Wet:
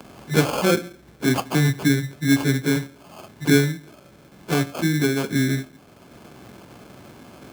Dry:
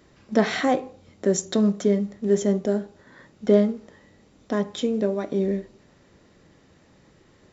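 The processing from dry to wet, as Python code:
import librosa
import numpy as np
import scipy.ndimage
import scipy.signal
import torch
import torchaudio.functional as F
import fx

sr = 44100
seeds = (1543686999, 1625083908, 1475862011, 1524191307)

y = fx.pitch_bins(x, sr, semitones=-6.5)
y = fx.sample_hold(y, sr, seeds[0], rate_hz=1900.0, jitter_pct=0)
y = fx.highpass(y, sr, hz=190.0, slope=6)
y = fx.band_squash(y, sr, depth_pct=40)
y = F.gain(torch.from_numpy(y), 6.0).numpy()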